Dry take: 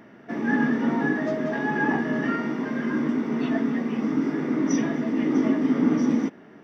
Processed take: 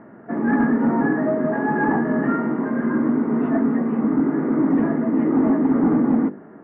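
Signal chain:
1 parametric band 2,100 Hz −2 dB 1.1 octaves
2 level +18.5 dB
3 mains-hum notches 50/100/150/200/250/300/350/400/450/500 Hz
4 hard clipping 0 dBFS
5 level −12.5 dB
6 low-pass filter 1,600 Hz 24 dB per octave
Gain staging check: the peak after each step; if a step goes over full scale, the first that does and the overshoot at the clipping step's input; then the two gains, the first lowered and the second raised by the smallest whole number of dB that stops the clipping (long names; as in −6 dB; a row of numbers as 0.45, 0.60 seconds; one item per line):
−10.0, +8.5, +7.5, 0.0, −12.5, −11.5 dBFS
step 2, 7.5 dB
step 2 +10.5 dB, step 5 −4.5 dB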